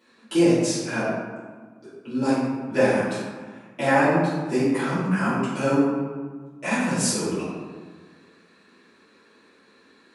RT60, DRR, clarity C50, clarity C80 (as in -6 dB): 1.5 s, -12.5 dB, -1.5 dB, 1.5 dB